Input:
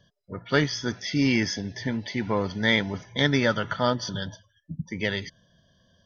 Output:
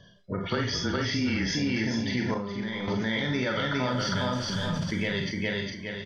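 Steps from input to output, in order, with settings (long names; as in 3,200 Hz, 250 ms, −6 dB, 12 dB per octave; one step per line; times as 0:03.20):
0:03.90–0:04.79: converter with a step at zero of −38 dBFS
low-pass filter 5,700 Hz 12 dB per octave
repeating echo 409 ms, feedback 23%, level −4 dB
brickwall limiter −18 dBFS, peak gain reduction 11.5 dB
four-comb reverb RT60 0.3 s, combs from 32 ms, DRR 2.5 dB
tape wow and flutter 26 cents
0:02.34–0:02.88: tuned comb filter 200 Hz, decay 1.2 s, mix 80%
downward compressor 2.5 to 1, threshold −36 dBFS, peak gain reduction 10 dB
0:00.49–0:01.55: frequency shifter −27 Hz
level that may fall only so fast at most 60 dB per second
level +7 dB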